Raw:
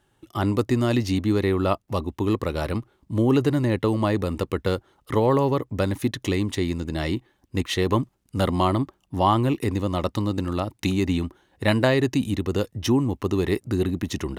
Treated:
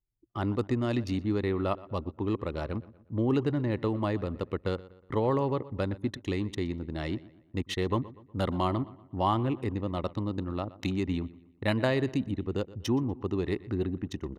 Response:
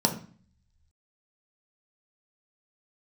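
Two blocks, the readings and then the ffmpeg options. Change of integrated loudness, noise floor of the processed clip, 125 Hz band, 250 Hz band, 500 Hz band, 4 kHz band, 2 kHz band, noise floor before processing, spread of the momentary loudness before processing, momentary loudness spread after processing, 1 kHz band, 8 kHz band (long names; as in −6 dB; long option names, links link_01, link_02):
−7.0 dB, −61 dBFS, −7.0 dB, −7.0 dB, −7.0 dB, −9.0 dB, −8.0 dB, −67 dBFS, 8 LU, 8 LU, −7.0 dB, −12.5 dB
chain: -filter_complex "[0:a]anlmdn=63.1,highshelf=frequency=9500:gain=-6.5,asplit=2[link_01][link_02];[link_02]adelay=121,lowpass=frequency=3700:poles=1,volume=-18.5dB,asplit=2[link_03][link_04];[link_04]adelay=121,lowpass=frequency=3700:poles=1,volume=0.44,asplit=2[link_05][link_06];[link_06]adelay=121,lowpass=frequency=3700:poles=1,volume=0.44,asplit=2[link_07][link_08];[link_08]adelay=121,lowpass=frequency=3700:poles=1,volume=0.44[link_09];[link_03][link_05][link_07][link_09]amix=inputs=4:normalize=0[link_10];[link_01][link_10]amix=inputs=2:normalize=0,volume=-7dB"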